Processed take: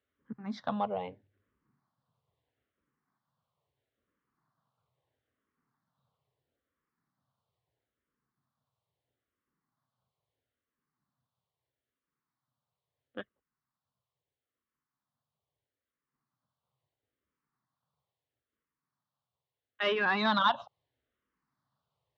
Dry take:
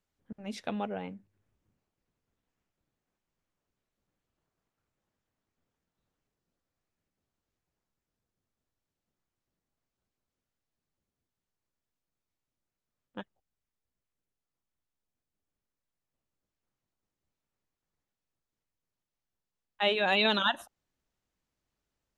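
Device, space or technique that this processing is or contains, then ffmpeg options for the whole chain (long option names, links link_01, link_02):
barber-pole phaser into a guitar amplifier: -filter_complex "[0:a]asplit=2[link_01][link_02];[link_02]afreqshift=-0.76[link_03];[link_01][link_03]amix=inputs=2:normalize=1,asoftclip=type=tanh:threshold=-25dB,highpass=95,equalizer=frequency=130:width_type=q:width=4:gain=7,equalizer=frequency=190:width_type=q:width=4:gain=-4,equalizer=frequency=340:width_type=q:width=4:gain=-5,equalizer=frequency=1100:width_type=q:width=4:gain=7,equalizer=frequency=2500:width_type=q:width=4:gain=-7,lowpass=frequency=4000:width=0.5412,lowpass=frequency=4000:width=1.3066,volume=5dB"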